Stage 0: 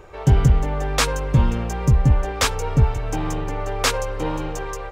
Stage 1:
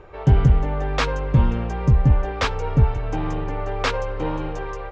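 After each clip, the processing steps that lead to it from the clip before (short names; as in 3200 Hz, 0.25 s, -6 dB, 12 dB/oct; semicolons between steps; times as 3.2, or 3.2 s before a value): air absorption 190 m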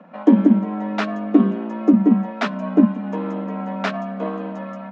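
transient shaper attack +6 dB, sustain -2 dB; LPF 1800 Hz 6 dB/oct; frequency shift +160 Hz; gain -2 dB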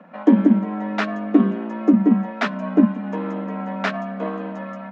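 bell 1800 Hz +4 dB 0.77 oct; gain -1 dB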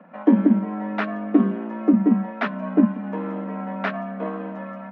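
LPF 2700 Hz 12 dB/oct; gain -2 dB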